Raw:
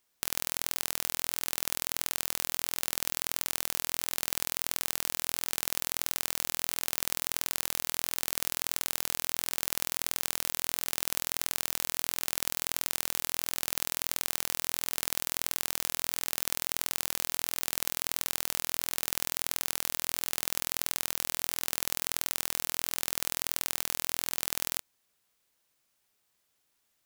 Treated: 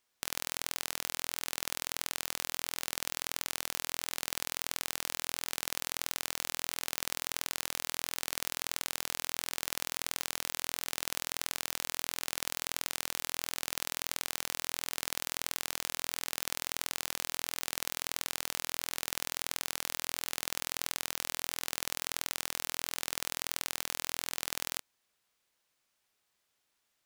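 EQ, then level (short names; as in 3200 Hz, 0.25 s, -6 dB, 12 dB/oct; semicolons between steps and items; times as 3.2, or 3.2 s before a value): low shelf 450 Hz -4.5 dB; high shelf 8500 Hz -8 dB; 0.0 dB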